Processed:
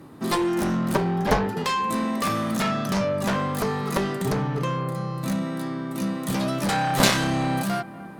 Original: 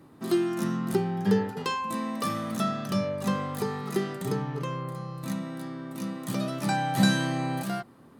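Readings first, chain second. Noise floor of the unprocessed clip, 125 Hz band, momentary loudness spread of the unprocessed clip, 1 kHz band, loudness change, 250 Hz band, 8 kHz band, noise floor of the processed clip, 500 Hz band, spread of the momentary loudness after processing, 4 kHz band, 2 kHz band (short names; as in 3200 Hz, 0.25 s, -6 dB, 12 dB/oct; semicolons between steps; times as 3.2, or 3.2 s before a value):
-52 dBFS, +4.0 dB, 10 LU, +6.0 dB, +4.5 dB, +3.0 dB, +8.0 dB, -39 dBFS, +4.5 dB, 6 LU, +6.5 dB, +6.0 dB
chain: analogue delay 0.242 s, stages 4096, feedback 78%, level -21.5 dB; added harmonics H 6 -13 dB, 7 -6 dB, 8 -19 dB, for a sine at -9.5 dBFS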